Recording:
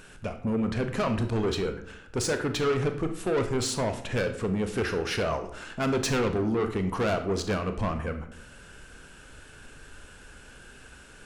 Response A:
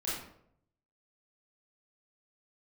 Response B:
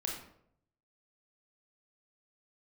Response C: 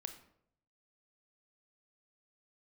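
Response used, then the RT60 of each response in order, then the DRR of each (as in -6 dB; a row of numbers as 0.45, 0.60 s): C; 0.70, 0.70, 0.70 s; -9.0, -1.0, 7.0 dB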